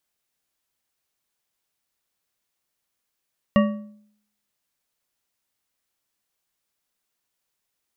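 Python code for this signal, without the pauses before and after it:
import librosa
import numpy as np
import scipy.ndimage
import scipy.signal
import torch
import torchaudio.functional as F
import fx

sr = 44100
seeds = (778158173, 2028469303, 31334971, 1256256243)

y = fx.strike_metal(sr, length_s=1.55, level_db=-12, body='bar', hz=210.0, decay_s=0.65, tilt_db=4.5, modes=5)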